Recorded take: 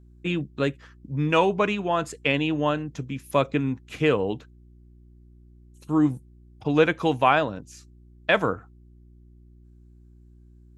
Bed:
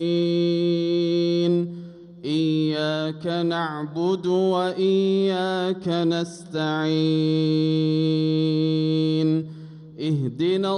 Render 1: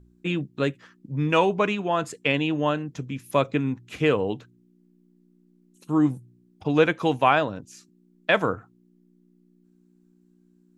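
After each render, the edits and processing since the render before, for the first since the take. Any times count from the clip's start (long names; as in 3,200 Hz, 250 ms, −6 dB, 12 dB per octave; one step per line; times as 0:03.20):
hum removal 60 Hz, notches 2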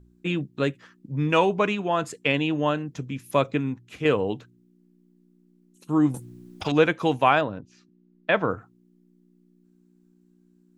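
0:03.46–0:04.05: fade out, to −6.5 dB
0:06.14–0:06.72: every bin compressed towards the loudest bin 2 to 1
0:07.41–0:08.50: high-frequency loss of the air 220 metres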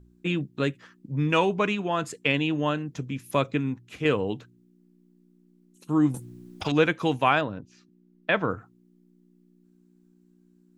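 dynamic equaliser 660 Hz, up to −4 dB, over −32 dBFS, Q 0.92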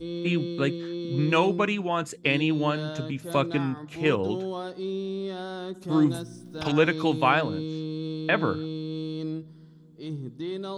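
mix in bed −11.5 dB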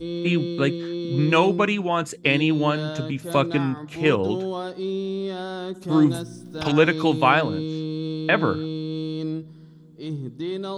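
level +4 dB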